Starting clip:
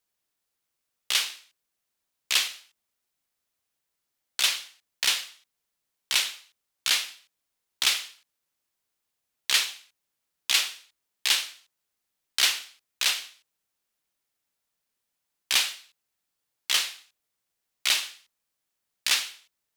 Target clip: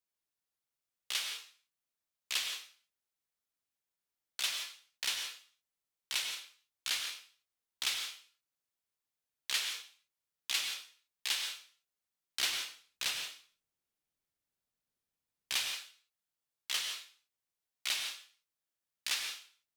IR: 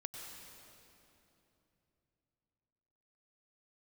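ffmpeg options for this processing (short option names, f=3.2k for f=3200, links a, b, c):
-filter_complex "[0:a]asettb=1/sr,asplit=3[a][b][c];[a]atrim=end=12.394[d];[b]atrim=start=12.39:end=15.53,asetpts=PTS-STARTPTS,afade=t=in:d=0.004:c=qsin,afade=t=out:st=3.136:d=0.004:c=qsin,lowshelf=f=400:g=9.5[e];[c]atrim=start=15.526[f];[d][e]acrossfade=d=0.004:c1=hsin:c2=qsin[g];[g][f]acrossfade=d=0.004:c1=qsin:c2=hsin[h];[1:a]atrim=start_sample=2205,afade=t=out:st=0.23:d=0.01,atrim=end_sample=10584[i];[h][i]afir=irnorm=-1:irlink=0,volume=-6.5dB"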